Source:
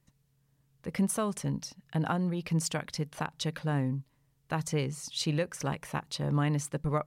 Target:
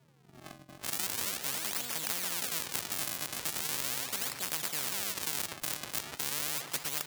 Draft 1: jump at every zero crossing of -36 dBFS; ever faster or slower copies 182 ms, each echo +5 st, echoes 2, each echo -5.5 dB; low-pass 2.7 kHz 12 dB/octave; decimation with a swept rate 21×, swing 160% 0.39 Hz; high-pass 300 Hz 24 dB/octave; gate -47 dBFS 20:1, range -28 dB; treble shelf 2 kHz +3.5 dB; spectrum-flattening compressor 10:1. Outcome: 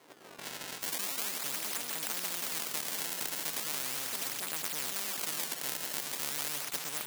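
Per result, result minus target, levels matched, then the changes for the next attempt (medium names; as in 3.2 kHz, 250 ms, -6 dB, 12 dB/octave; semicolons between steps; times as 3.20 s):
jump at every zero crossing: distortion +8 dB; decimation with a swept rate: distortion -7 dB; 125 Hz band -4.0 dB
change: jump at every zero crossing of -44.5 dBFS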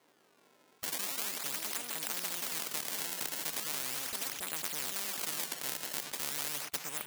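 decimation with a swept rate: distortion -7 dB; 125 Hz band -4.5 dB
change: decimation with a swept rate 54×, swing 160% 0.39 Hz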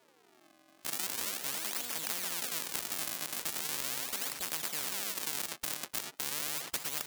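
125 Hz band -4.5 dB
change: high-pass 110 Hz 24 dB/octave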